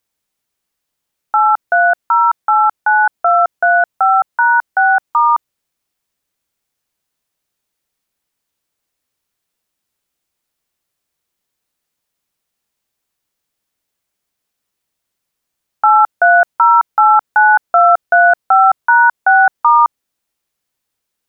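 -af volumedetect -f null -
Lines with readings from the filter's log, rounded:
mean_volume: -15.7 dB
max_volume: -1.9 dB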